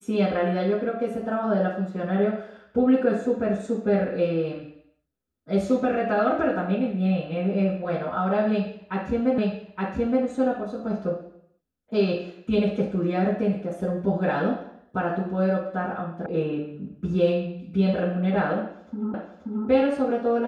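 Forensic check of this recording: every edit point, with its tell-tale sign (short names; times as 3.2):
9.38 repeat of the last 0.87 s
16.26 sound cut off
19.14 repeat of the last 0.53 s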